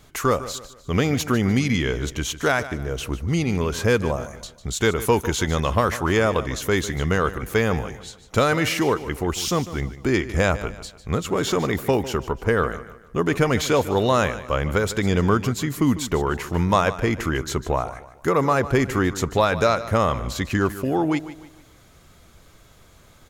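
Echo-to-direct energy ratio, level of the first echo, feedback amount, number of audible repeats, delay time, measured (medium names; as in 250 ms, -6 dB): -14.0 dB, -14.5 dB, 38%, 3, 150 ms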